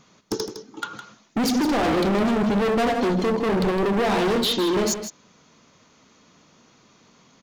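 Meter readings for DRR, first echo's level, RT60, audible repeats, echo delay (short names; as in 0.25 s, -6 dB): none, -10.0 dB, none, 1, 0.16 s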